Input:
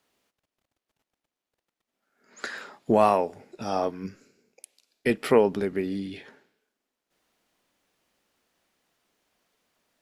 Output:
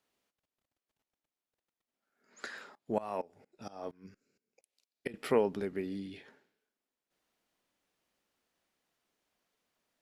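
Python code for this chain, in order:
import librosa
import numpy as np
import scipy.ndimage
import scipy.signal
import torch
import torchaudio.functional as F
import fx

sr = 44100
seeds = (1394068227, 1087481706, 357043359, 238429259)

y = fx.tremolo_decay(x, sr, direction='swelling', hz=4.3, depth_db=21, at=(2.75, 5.14))
y = y * 10.0 ** (-8.5 / 20.0)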